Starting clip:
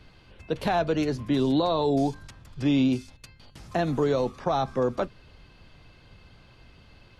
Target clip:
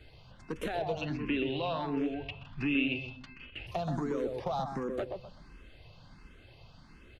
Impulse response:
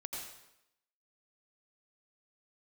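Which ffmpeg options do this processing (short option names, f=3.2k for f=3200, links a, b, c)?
-filter_complex "[0:a]acompressor=threshold=-27dB:ratio=20,aeval=exprs='clip(val(0),-1,0.0473)':c=same,asettb=1/sr,asplit=3[a][b][c];[a]atrim=end=1.014[d];[b]atrim=start=1.01:end=3.67,asetpts=PTS-STARTPTS,afade=t=in:d=0.004:c=qsin,afade=t=out:st=2.656:d=0.004:c=qsin,lowpass=f=2.7k:t=q:w=10[e];[c]atrim=start=3.666[f];[d][e]acrossfade=d=0.004:c1=hsin:c2=qsin[g];[g][f]acrossfade=d=0.004:c1=qsin:c2=hsin,asplit=2[h][i];[i]adelay=127,lowpass=f=1.2k:p=1,volume=-4dB,asplit=2[j][k];[k]adelay=127,lowpass=f=1.2k:p=1,volume=0.33,asplit=2[l][m];[m]adelay=127,lowpass=f=1.2k:p=1,volume=0.33,asplit=2[n][o];[o]adelay=127,lowpass=f=1.2k:p=1,volume=0.33[p];[h][j][l][n][p]amix=inputs=5:normalize=0,asplit=2[q][r];[r]afreqshift=1.4[s];[q][s]amix=inputs=2:normalize=1"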